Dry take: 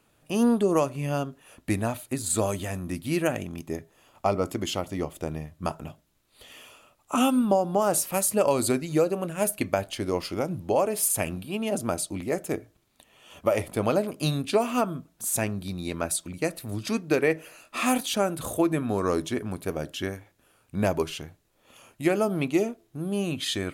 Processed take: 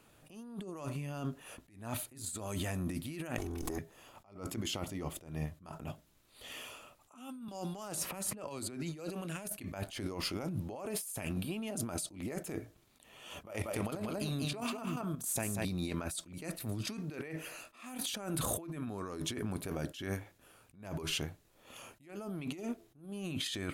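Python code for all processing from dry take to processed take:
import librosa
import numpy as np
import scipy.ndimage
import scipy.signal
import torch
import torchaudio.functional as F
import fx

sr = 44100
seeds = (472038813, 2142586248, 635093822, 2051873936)

y = fx.chain(x, sr, fx.lower_of_two(delay_ms=2.7),
    fx.peak_eq(hz=2600.0, db=-10.0, octaves=0.89),
    fx.env_flatten(amount_pct=100), at=(3.38, 3.78))
y = fx.chain(y, sr, fx.highpass(hz=46.0, slope=12),
    fx.high_shelf(hz=8000.0, db=-8.5),
    fx.band_squash(depth_pct=100), at=(7.48, 9.49))
y = fx.chain(y, sr, fx.level_steps(step_db=11),
    fx.echo_single(ms=188, db=-4.0), at=(13.46, 15.65))
y = fx.dynamic_eq(y, sr, hz=530.0, q=1.4, threshold_db=-36.0, ratio=4.0, max_db=-5)
y = fx.over_compress(y, sr, threshold_db=-35.0, ratio=-1.0)
y = fx.attack_slew(y, sr, db_per_s=130.0)
y = F.gain(torch.from_numpy(y), -4.0).numpy()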